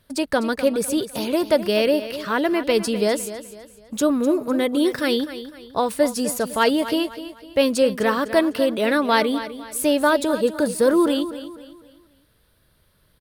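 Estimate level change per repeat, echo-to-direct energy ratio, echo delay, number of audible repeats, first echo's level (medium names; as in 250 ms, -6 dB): -8.5 dB, -12.5 dB, 252 ms, 3, -13.0 dB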